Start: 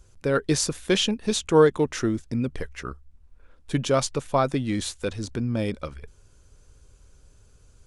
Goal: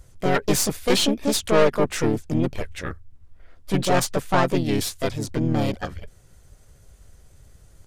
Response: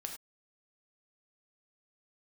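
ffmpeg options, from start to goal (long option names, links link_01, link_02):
-filter_complex "[0:a]aeval=exprs='(tanh(10*val(0)+0.6)-tanh(0.6))/10':channel_layout=same,asplit=3[link_01][link_02][link_03];[link_02]asetrate=52444,aresample=44100,atempo=0.840896,volume=-14dB[link_04];[link_03]asetrate=58866,aresample=44100,atempo=0.749154,volume=0dB[link_05];[link_01][link_04][link_05]amix=inputs=3:normalize=0,volume=3.5dB"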